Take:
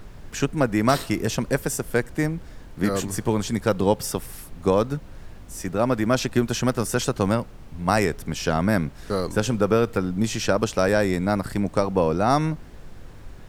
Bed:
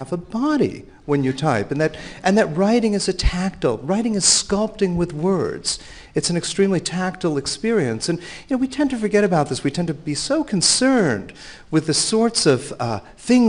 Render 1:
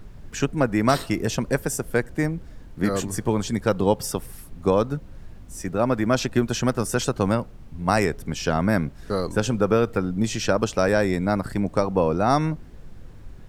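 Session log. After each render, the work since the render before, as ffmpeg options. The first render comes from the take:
ffmpeg -i in.wav -af "afftdn=noise_reduction=6:noise_floor=-42" out.wav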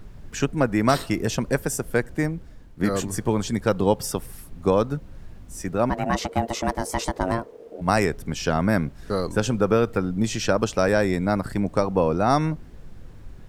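ffmpeg -i in.wav -filter_complex "[0:a]asplit=3[link_01][link_02][link_03];[link_01]afade=type=out:start_time=5.89:duration=0.02[link_04];[link_02]aeval=exprs='val(0)*sin(2*PI*460*n/s)':channel_layout=same,afade=type=in:start_time=5.89:duration=0.02,afade=type=out:start_time=7.8:duration=0.02[link_05];[link_03]afade=type=in:start_time=7.8:duration=0.02[link_06];[link_04][link_05][link_06]amix=inputs=3:normalize=0,asplit=2[link_07][link_08];[link_07]atrim=end=2.8,asetpts=PTS-STARTPTS,afade=type=out:start_time=2.16:duration=0.64:silence=0.473151[link_09];[link_08]atrim=start=2.8,asetpts=PTS-STARTPTS,afade=type=in:duration=0.004:curve=hsin:silence=0.473151[link_10];[link_09][link_10]concat=n=2:v=0:a=1" out.wav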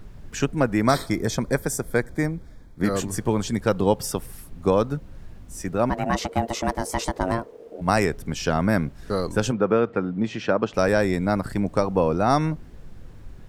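ffmpeg -i in.wav -filter_complex "[0:a]asettb=1/sr,asplit=3[link_01][link_02][link_03];[link_01]atrim=end=0.814[link_04];[link_02]atrim=start=0.81:end=2.84,asetpts=PTS-STARTPTS,afade=type=in:duration=0.004:curve=qsin,afade=type=out:start_time=2.026:duration=0.004:curve=qsin,asuperstop=centerf=2800:order=8:qfactor=4.4[link_05];[link_03]atrim=start=2.836[link_06];[link_04][link_05]acrossfade=duration=0.004:curve1=hsin:curve2=qsin[link_07];[link_07][link_06]acrossfade=duration=0.004:curve1=qsin:curve2=hsin,asplit=3[link_08][link_09][link_10];[link_08]afade=type=out:start_time=9.51:duration=0.02[link_11];[link_09]highpass=150,lowpass=2600,afade=type=in:start_time=9.51:duration=0.02,afade=type=out:start_time=10.73:duration=0.02[link_12];[link_10]afade=type=in:start_time=10.73:duration=0.02[link_13];[link_11][link_12][link_13]amix=inputs=3:normalize=0" out.wav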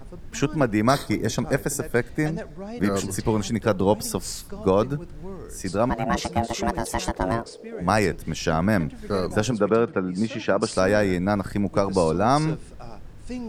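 ffmpeg -i in.wav -i bed.wav -filter_complex "[1:a]volume=-19dB[link_01];[0:a][link_01]amix=inputs=2:normalize=0" out.wav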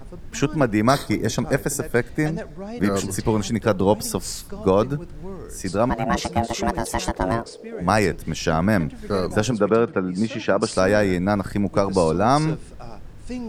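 ffmpeg -i in.wav -af "volume=2dB" out.wav

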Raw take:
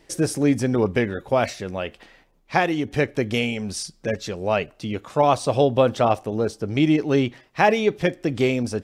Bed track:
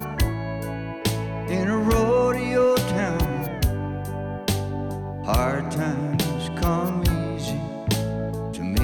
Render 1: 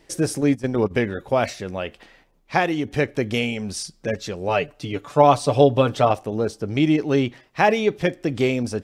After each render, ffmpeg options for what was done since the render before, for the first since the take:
ffmpeg -i in.wav -filter_complex "[0:a]asplit=3[link_01][link_02][link_03];[link_01]afade=type=out:start_time=0.4:duration=0.02[link_04];[link_02]agate=range=-15dB:threshold=-22dB:ratio=16:release=100:detection=peak,afade=type=in:start_time=0.4:duration=0.02,afade=type=out:start_time=0.9:duration=0.02[link_05];[link_03]afade=type=in:start_time=0.9:duration=0.02[link_06];[link_04][link_05][link_06]amix=inputs=3:normalize=0,asettb=1/sr,asplit=3[link_07][link_08][link_09];[link_07]atrim=end=4.484[link_10];[link_08]atrim=start=4.48:end=6.11,asetpts=PTS-STARTPTS,afade=type=in:duration=0.004:curve=qsin,afade=type=out:start_time=1.626:duration=0.004:curve=qsin,aecho=1:1:6.9:0.63,atrim=end_sample=71883[link_11];[link_09]atrim=start=6.106[link_12];[link_10][link_11]acrossfade=duration=0.004:curve1=hsin:curve2=qsin[link_13];[link_13][link_12]acrossfade=duration=0.004:curve1=qsin:curve2=hsin" out.wav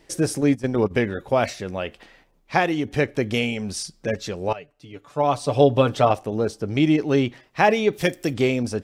ffmpeg -i in.wav -filter_complex "[0:a]asettb=1/sr,asplit=3[link_01][link_02][link_03];[link_01]atrim=end=7.934[link_04];[link_02]atrim=start=7.93:end=8.34,asetpts=PTS-STARTPTS,afade=type=in:duration=0.004:curve=qsin,afade=type=out:start_time=0.406:duration=0.004:curve=qsin,aemphasis=mode=production:type=75fm[link_05];[link_03]atrim=start=8.336[link_06];[link_04][link_05]acrossfade=duration=0.004:curve1=hsin:curve2=qsin[link_07];[link_07][link_06]acrossfade=duration=0.004:curve1=qsin:curve2=hsin,asplit=2[link_08][link_09];[link_08]atrim=end=4.53,asetpts=PTS-STARTPTS,afade=type=out:start_time=4.526:duration=0.004:curve=hsin:silence=0.141254[link_10];[link_09]atrim=start=4.53,asetpts=PTS-STARTPTS,afade=type=in:duration=1.18:curve=qua:silence=0.141254[link_11];[link_10][link_11]concat=n=2:v=0:a=1" out.wav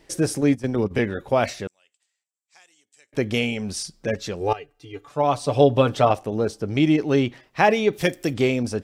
ffmpeg -i in.wav -filter_complex "[0:a]asettb=1/sr,asplit=3[link_01][link_02][link_03];[link_01]atrim=end=0.584[link_04];[link_02]atrim=start=0.58:end=0.99,asetpts=PTS-STARTPTS,afade=type=in:duration=0.004:curve=qsin,afade=type=out:start_time=0.406:duration=0.004:curve=qsin,acrossover=split=390|3000[link_05][link_06][link_07];[link_06]acompressor=threshold=-27dB:ratio=6:attack=3.2:release=140:knee=2.83:detection=peak[link_08];[link_05][link_08][link_07]amix=inputs=3:normalize=0[link_09];[link_03]atrim=start=0.986[link_10];[link_04][link_09]acrossfade=duration=0.004:curve1=hsin:curve2=qsin[link_11];[link_11][link_10]acrossfade=duration=0.004:curve1=qsin:curve2=hsin,asettb=1/sr,asplit=3[link_12][link_13][link_14];[link_12]atrim=end=1.674[link_15];[link_13]atrim=start=1.67:end=3.13,asetpts=PTS-STARTPTS,afade=type=in:duration=0.004:curve=qsin,afade=type=out:start_time=1.456:duration=0.004:curve=qsin,bandpass=frequency=7700:width_type=q:width=8.1[link_16];[link_14]atrim=start=3.126[link_17];[link_15][link_16]acrossfade=duration=0.004:curve1=hsin:curve2=qsin[link_18];[link_18][link_17]acrossfade=duration=0.004:curve1=qsin:curve2=hsin,asettb=1/sr,asplit=3[link_19][link_20][link_21];[link_19]atrim=end=4.404[link_22];[link_20]atrim=start=4.4:end=5.09,asetpts=PTS-STARTPTS,afade=type=in:duration=0.004:curve=qsin,afade=type=out:start_time=0.686:duration=0.004:curve=qsin,aecho=1:1:2.5:0.82,atrim=end_sample=30429[link_23];[link_21]atrim=start=5.086[link_24];[link_22][link_23]acrossfade=duration=0.004:curve1=hsin:curve2=qsin[link_25];[link_25][link_24]acrossfade=duration=0.004:curve1=qsin:curve2=hsin" out.wav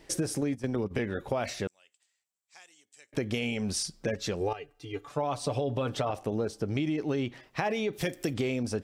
ffmpeg -i in.wav -af "alimiter=limit=-13dB:level=0:latency=1:release=20,acompressor=threshold=-27dB:ratio=6" out.wav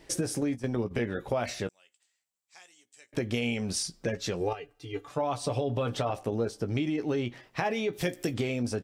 ffmpeg -i in.wav -filter_complex "[0:a]asplit=2[link_01][link_02];[link_02]adelay=17,volume=-10dB[link_03];[link_01][link_03]amix=inputs=2:normalize=0" out.wav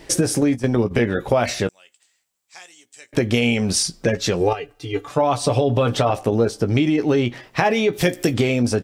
ffmpeg -i in.wav -af "volume=11.5dB" out.wav

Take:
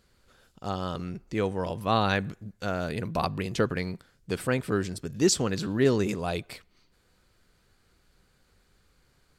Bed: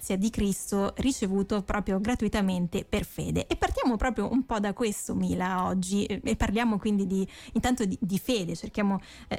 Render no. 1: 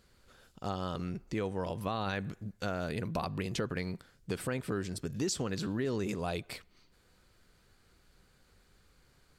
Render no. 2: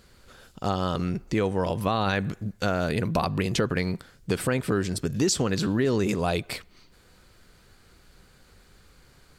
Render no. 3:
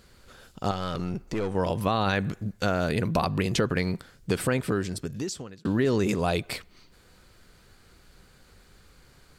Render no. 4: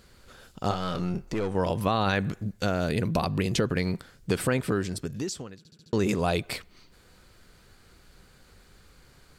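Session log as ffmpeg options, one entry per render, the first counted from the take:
ffmpeg -i in.wav -af "alimiter=limit=-16.5dB:level=0:latency=1:release=21,acompressor=threshold=-33dB:ratio=2.5" out.wav
ffmpeg -i in.wav -af "volume=9.5dB" out.wav
ffmpeg -i in.wav -filter_complex "[0:a]asettb=1/sr,asplit=3[link_01][link_02][link_03];[link_01]atrim=end=0.714[link_04];[link_02]atrim=start=0.71:end=1.55,asetpts=PTS-STARTPTS,afade=type=in:duration=0.004:curve=qsin,afade=type=out:start_time=0.836:duration=0.004:curve=qsin,aeval=exprs='(tanh(15.8*val(0)+0.45)-tanh(0.45))/15.8':channel_layout=same[link_05];[link_03]atrim=start=1.546[link_06];[link_04][link_05]acrossfade=duration=0.004:curve1=hsin:curve2=qsin[link_07];[link_07][link_06]acrossfade=duration=0.004:curve1=qsin:curve2=hsin,asplit=2[link_08][link_09];[link_08]atrim=end=5.65,asetpts=PTS-STARTPTS,afade=type=out:start_time=4.54:duration=1.11[link_10];[link_09]atrim=start=5.65,asetpts=PTS-STARTPTS,afade=type=in:duration=0.004:curve=hsin[link_11];[link_10][link_11]concat=n=2:v=0:a=1" out.wav
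ffmpeg -i in.wav -filter_complex "[0:a]asettb=1/sr,asplit=3[link_01][link_02][link_03];[link_01]atrim=end=0.674[link_04];[link_02]atrim=start=0.67:end=1.34,asetpts=PTS-STARTPTS,afade=type=in:duration=0.004:curve=qsin,afade=type=out:start_time=0.666:duration=0.004:curve=qsin,asplit=2[link_05][link_06];[link_06]adelay=28,volume=-8dB[link_07];[link_05][link_07]amix=inputs=2:normalize=0,atrim=end_sample=29547[link_08];[link_03]atrim=start=1.336[link_09];[link_04][link_08]acrossfade=duration=0.004:curve1=hsin:curve2=qsin[link_10];[link_10][link_09]acrossfade=duration=0.004:curve1=qsin:curve2=hsin,asettb=1/sr,asplit=3[link_11][link_12][link_13];[link_11]atrim=end=2.454[link_14];[link_12]atrim=start=2.45:end=3.86,asetpts=PTS-STARTPTS,afade=type=in:duration=0.004:curve=qsin,afade=type=out:start_time=1.406:duration=0.004:curve=qsin,equalizer=frequency=1200:width_type=o:width=1.8:gain=-3.5[link_15];[link_13]atrim=start=3.856[link_16];[link_14][link_15]acrossfade=duration=0.004:curve1=hsin:curve2=qsin[link_17];[link_17][link_16]acrossfade=duration=0.004:curve1=qsin:curve2=hsin,asplit=6[link_18][link_19][link_20][link_21][link_22][link_23];[link_18]atrim=end=5.652[link_24];[link_19]atrim=start=5.578:end=5.652[link_25];[link_20]atrim=start=5.578:end=5.652[link_26];[link_21]atrim=start=5.578:end=5.652[link_27];[link_22]atrim=start=5.578:end=5.652[link_28];[link_23]atrim=start=5.928[link_29];[link_24][link_25]acrossfade=duration=0.004:curve1=hsin:curve2=hsin[link_30];[link_30][link_26]acrossfade=duration=0.004:curve1=hsin:curve2=hsin[link_31];[link_31][link_27]acrossfade=duration=0.004:curve1=hsin:curve2=hsin[link_32];[link_32][link_28]acrossfade=duration=0.004:curve1=hsin:curve2=hsin[link_33];[link_33][link_29]acrossfade=duration=0.004:curve1=hsin:curve2=hsin" out.wav

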